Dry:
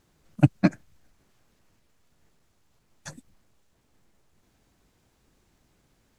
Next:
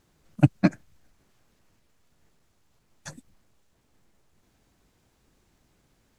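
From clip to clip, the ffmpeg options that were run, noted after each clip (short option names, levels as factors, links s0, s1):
-af anull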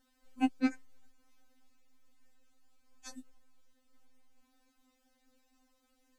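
-af "afftfilt=real='re*3.46*eq(mod(b,12),0)':imag='im*3.46*eq(mod(b,12),0)':win_size=2048:overlap=0.75,volume=0.75"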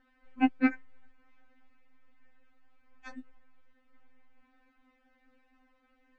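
-af "lowpass=f=2000:t=q:w=2.1,volume=1.58"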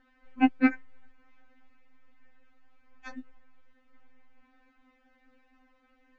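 -af "aresample=16000,aresample=44100,volume=1.41"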